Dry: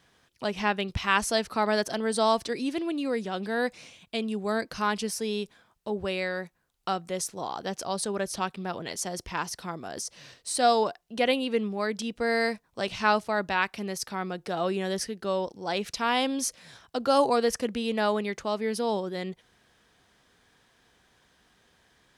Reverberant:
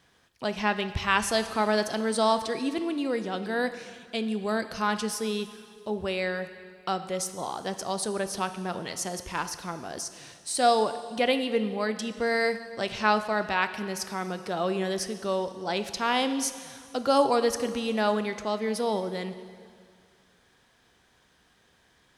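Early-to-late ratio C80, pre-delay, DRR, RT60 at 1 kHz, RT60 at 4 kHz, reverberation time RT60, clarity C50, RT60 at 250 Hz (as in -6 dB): 12.5 dB, 7 ms, 10.0 dB, 2.1 s, 1.9 s, 2.1 s, 11.5 dB, 2.1 s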